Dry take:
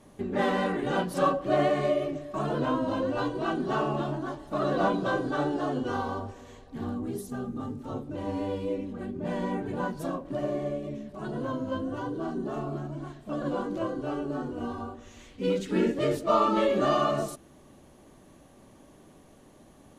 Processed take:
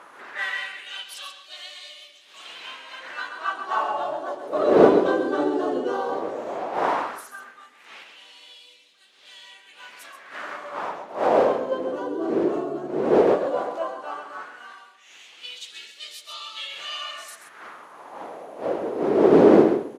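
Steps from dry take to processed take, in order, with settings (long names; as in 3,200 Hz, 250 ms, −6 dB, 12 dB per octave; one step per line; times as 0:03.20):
wind on the microphone 320 Hz −25 dBFS
single-tap delay 132 ms −9 dB
auto-filter high-pass sine 0.14 Hz 360–3,700 Hz
level +1 dB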